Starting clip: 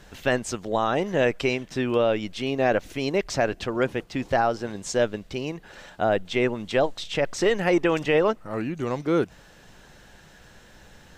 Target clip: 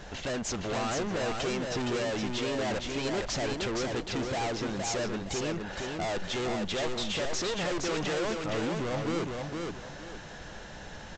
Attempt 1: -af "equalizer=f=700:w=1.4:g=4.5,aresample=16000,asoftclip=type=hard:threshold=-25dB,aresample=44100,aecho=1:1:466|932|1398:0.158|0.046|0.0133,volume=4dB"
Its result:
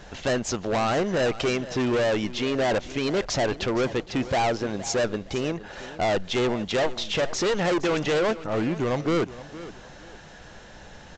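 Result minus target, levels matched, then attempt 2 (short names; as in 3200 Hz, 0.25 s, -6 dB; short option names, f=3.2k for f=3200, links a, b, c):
echo-to-direct -12 dB; hard clip: distortion -4 dB
-af "equalizer=f=700:w=1.4:g=4.5,aresample=16000,asoftclip=type=hard:threshold=-35dB,aresample=44100,aecho=1:1:466|932|1398|1864:0.631|0.183|0.0531|0.0154,volume=4dB"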